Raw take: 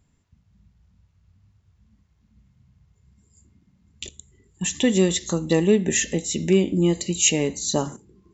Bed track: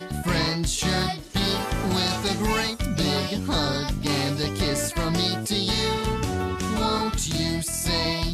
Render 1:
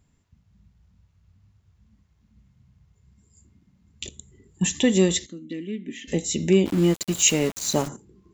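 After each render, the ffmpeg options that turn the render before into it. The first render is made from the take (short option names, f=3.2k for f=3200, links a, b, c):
-filter_complex "[0:a]asettb=1/sr,asplit=3[a][b][c];[a]atrim=end=4.074[d];[b]atrim=start=4.07:end=4.72,asetpts=PTS-STARTPTS,afade=t=in:d=0.004:c=qsin,afade=t=out:st=0.646:d=0.004:c=qsin,equalizer=f=250:w=0.44:g=6[e];[c]atrim=start=4.716[f];[d][e]acrossfade=d=0.004:c1=hsin:c2=qsin[g];[g][f]acrossfade=d=0.004:c1=qsin:c2=hsin,asplit=3[h][i][j];[h]afade=t=out:st=5.25:d=0.02[k];[i]asplit=3[l][m][n];[l]bandpass=f=270:t=q:w=8,volume=0dB[o];[m]bandpass=f=2.29k:t=q:w=8,volume=-6dB[p];[n]bandpass=f=3.01k:t=q:w=8,volume=-9dB[q];[o][p][q]amix=inputs=3:normalize=0,afade=t=in:st=5.25:d=0.02,afade=t=out:st=6.07:d=0.02[r];[j]afade=t=in:st=6.07:d=0.02[s];[k][r][s]amix=inputs=3:normalize=0,asplit=3[t][u][v];[t]afade=t=out:st=6.65:d=0.02[w];[u]aeval=exprs='val(0)*gte(abs(val(0)),0.0335)':c=same,afade=t=in:st=6.65:d=0.02,afade=t=out:st=7.87:d=0.02[x];[v]afade=t=in:st=7.87:d=0.02[y];[w][x][y]amix=inputs=3:normalize=0"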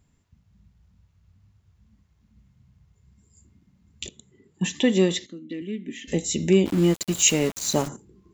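-filter_complex "[0:a]asettb=1/sr,asplit=3[a][b][c];[a]atrim=end=4.084[d];[b]atrim=start=4.08:end=5.62,asetpts=PTS-STARTPTS,afade=t=in:d=0.004:c=qsin,afade=t=out:st=1.536:d=0.004:c=qsin,highpass=160,lowpass=4.8k[e];[c]atrim=start=5.616[f];[d][e]acrossfade=d=0.004:c1=hsin:c2=qsin[g];[g][f]acrossfade=d=0.004:c1=qsin:c2=hsin"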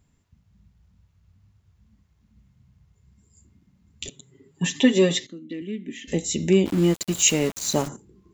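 -filter_complex "[0:a]asettb=1/sr,asplit=3[a][b][c];[a]atrim=end=4.064[d];[b]atrim=start=4.06:end=5.27,asetpts=PTS-STARTPTS,afade=t=in:d=0.004:c=qsin,afade=t=out:st=1.206:d=0.004:c=qsin,aecho=1:1:7.3:0.97,atrim=end_sample=53361[e];[c]atrim=start=5.266[f];[d][e]acrossfade=d=0.004:c1=hsin:c2=qsin[g];[g][f]acrossfade=d=0.004:c1=qsin:c2=hsin"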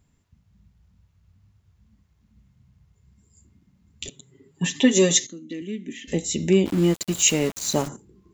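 -filter_complex "[0:a]asettb=1/sr,asplit=3[a][b][c];[a]atrim=end=4.914[d];[b]atrim=start=4.91:end=5.93,asetpts=PTS-STARTPTS,afade=t=in:d=0.004:c=qsin,afade=t=out:st=1.016:d=0.004:c=qsin,lowpass=f=6.6k:t=q:w=8[e];[c]atrim=start=5.926[f];[d][e]acrossfade=d=0.004:c1=hsin:c2=qsin[g];[g][f]acrossfade=d=0.004:c1=qsin:c2=hsin"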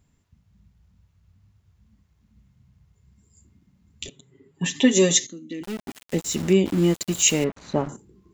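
-filter_complex "[0:a]asettb=1/sr,asplit=3[a][b][c];[a]atrim=end=4.074[d];[b]atrim=start=4.07:end=4.66,asetpts=PTS-STARTPTS,afade=t=in:d=0.004:c=qsin,afade=t=out:st=0.586:d=0.004:c=qsin,bass=f=250:g=-2,treble=f=4k:g=-8[e];[c]atrim=start=4.656[f];[d][e]acrossfade=d=0.004:c1=hsin:c2=qsin[g];[g][f]acrossfade=d=0.004:c1=qsin:c2=hsin,asettb=1/sr,asplit=3[h][i][j];[h]atrim=end=5.634[k];[i]atrim=start=5.63:end=6.53,asetpts=PTS-STARTPTS,afade=t=in:d=0.004:c=qsin,afade=t=out:st=0.896:d=0.004:c=qsin,aeval=exprs='val(0)*gte(abs(val(0)),0.0251)':c=same[l];[j]atrim=start=6.526[m];[k][l]acrossfade=d=0.004:c1=hsin:c2=qsin[n];[n][m]acrossfade=d=0.004:c1=qsin:c2=hsin,asettb=1/sr,asplit=3[o][p][q];[o]atrim=end=7.444[r];[p]atrim=start=7.44:end=7.89,asetpts=PTS-STARTPTS,afade=t=in:d=0.004:c=qsin,afade=t=out:st=0.446:d=0.004:c=qsin,lowpass=1.8k[s];[q]atrim=start=7.886[t];[r][s]acrossfade=d=0.004:c1=hsin:c2=qsin[u];[u][t]acrossfade=d=0.004:c1=qsin:c2=hsin"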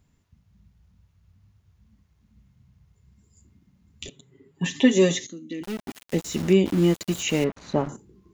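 -filter_complex "[0:a]bandreject=f=7.5k:w=16,acrossover=split=2800[a][b];[b]acompressor=threshold=-31dB:ratio=4:attack=1:release=60[c];[a][c]amix=inputs=2:normalize=0"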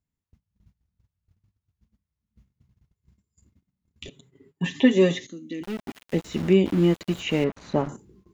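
-filter_complex "[0:a]agate=range=-21dB:threshold=-55dB:ratio=16:detection=peak,acrossover=split=3900[a][b];[b]acompressor=threshold=-50dB:ratio=4:attack=1:release=60[c];[a][c]amix=inputs=2:normalize=0"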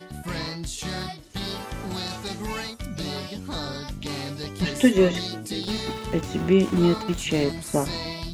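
-filter_complex "[1:a]volume=-7.5dB[a];[0:a][a]amix=inputs=2:normalize=0"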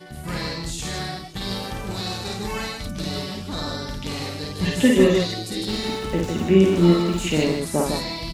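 -af "aecho=1:1:52.48|154.5:0.794|0.631"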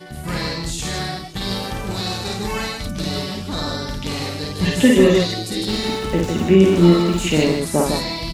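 -af "volume=4dB,alimiter=limit=-2dB:level=0:latency=1"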